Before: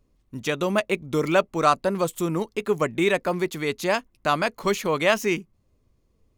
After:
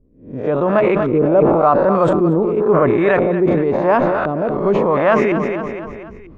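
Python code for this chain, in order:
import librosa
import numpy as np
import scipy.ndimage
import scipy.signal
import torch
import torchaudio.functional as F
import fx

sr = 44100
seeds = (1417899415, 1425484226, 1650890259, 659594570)

p1 = fx.spec_swells(x, sr, rise_s=0.44)
p2 = scipy.signal.sosfilt(scipy.signal.butter(6, 11000.0, 'lowpass', fs=sr, output='sos'), p1)
p3 = fx.rider(p2, sr, range_db=10, speed_s=0.5)
p4 = p2 + (p3 * librosa.db_to_amplitude(0.0))
p5 = fx.filter_lfo_lowpass(p4, sr, shape='saw_up', hz=0.94, low_hz=390.0, high_hz=1600.0, q=1.3)
p6 = p5 + fx.echo_feedback(p5, sr, ms=237, feedback_pct=41, wet_db=-13.0, dry=0)
p7 = fx.sustainer(p6, sr, db_per_s=24.0)
y = p7 * librosa.db_to_amplitude(-1.0)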